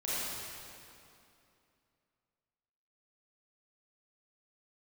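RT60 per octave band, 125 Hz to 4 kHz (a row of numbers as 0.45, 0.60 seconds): 2.8, 3.0, 2.7, 2.6, 2.4, 2.1 seconds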